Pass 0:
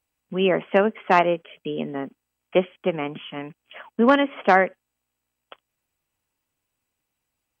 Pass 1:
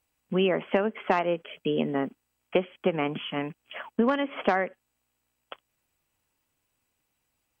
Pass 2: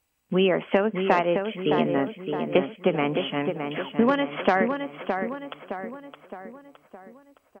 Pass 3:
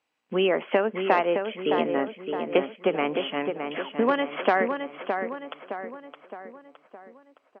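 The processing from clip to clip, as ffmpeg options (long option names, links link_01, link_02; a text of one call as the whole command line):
ffmpeg -i in.wav -af "acompressor=threshold=-22dB:ratio=16,volume=2.5dB" out.wav
ffmpeg -i in.wav -filter_complex "[0:a]asplit=2[link_01][link_02];[link_02]adelay=615,lowpass=frequency=2800:poles=1,volume=-6dB,asplit=2[link_03][link_04];[link_04]adelay=615,lowpass=frequency=2800:poles=1,volume=0.51,asplit=2[link_05][link_06];[link_06]adelay=615,lowpass=frequency=2800:poles=1,volume=0.51,asplit=2[link_07][link_08];[link_08]adelay=615,lowpass=frequency=2800:poles=1,volume=0.51,asplit=2[link_09][link_10];[link_10]adelay=615,lowpass=frequency=2800:poles=1,volume=0.51,asplit=2[link_11][link_12];[link_12]adelay=615,lowpass=frequency=2800:poles=1,volume=0.51[link_13];[link_01][link_03][link_05][link_07][link_09][link_11][link_13]amix=inputs=7:normalize=0,volume=3dB" out.wav
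ffmpeg -i in.wav -af "highpass=290,lowpass=4100" out.wav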